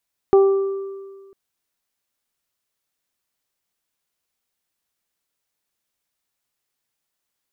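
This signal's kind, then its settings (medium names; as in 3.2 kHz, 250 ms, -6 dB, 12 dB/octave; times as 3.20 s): additive tone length 1.00 s, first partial 391 Hz, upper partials -11/-18 dB, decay 1.61 s, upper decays 0.58/1.61 s, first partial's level -8 dB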